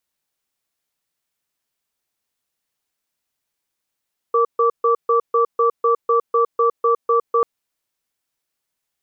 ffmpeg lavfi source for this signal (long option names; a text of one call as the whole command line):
ffmpeg -f lavfi -i "aevalsrc='0.168*(sin(2*PI*466*t)+sin(2*PI*1160*t))*clip(min(mod(t,0.25),0.11-mod(t,0.25))/0.005,0,1)':duration=3.09:sample_rate=44100" out.wav